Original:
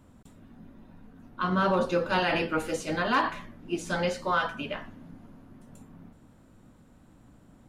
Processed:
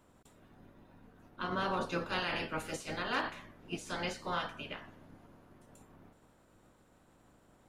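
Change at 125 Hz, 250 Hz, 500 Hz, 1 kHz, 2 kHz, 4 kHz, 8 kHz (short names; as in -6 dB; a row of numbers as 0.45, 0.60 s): -9.5, -10.5, -11.0, -9.0, -7.5, -4.5, -5.5 dB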